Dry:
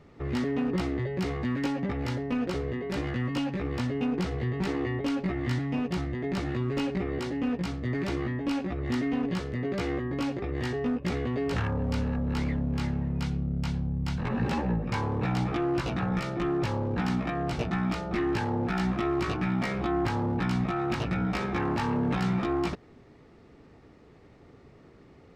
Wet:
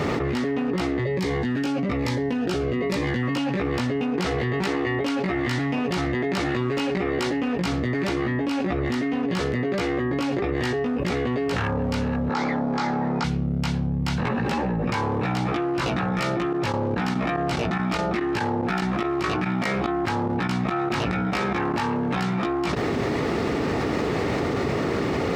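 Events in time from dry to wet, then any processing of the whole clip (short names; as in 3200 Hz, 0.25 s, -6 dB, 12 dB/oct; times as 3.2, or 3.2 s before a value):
1.04–3.23 cascading phaser falling 1.1 Hz
4.16–7.59 low shelf 430 Hz -4 dB
12.29–13.24 speaker cabinet 250–6700 Hz, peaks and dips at 810 Hz +9 dB, 1300 Hz +6 dB, 2800 Hz -9 dB
16.32–21.91 chopper 2.4 Hz
whole clip: HPF 57 Hz; low shelf 180 Hz -8 dB; fast leveller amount 100%; gain +3.5 dB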